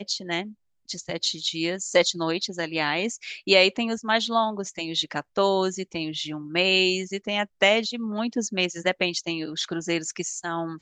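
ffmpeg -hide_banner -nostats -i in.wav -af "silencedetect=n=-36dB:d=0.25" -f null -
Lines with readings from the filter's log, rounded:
silence_start: 0.50
silence_end: 0.89 | silence_duration: 0.39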